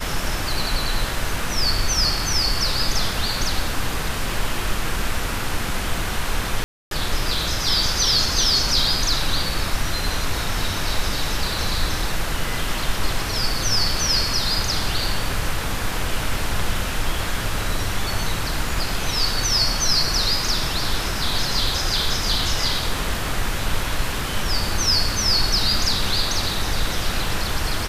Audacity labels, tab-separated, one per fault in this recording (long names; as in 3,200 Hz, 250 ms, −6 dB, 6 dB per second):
6.640000	6.910000	drop-out 272 ms